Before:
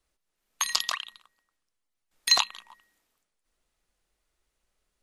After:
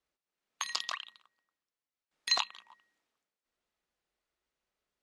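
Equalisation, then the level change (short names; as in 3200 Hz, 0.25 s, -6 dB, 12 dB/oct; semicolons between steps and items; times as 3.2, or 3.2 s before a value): HPF 180 Hz 6 dB/oct; air absorption 72 m; -5.5 dB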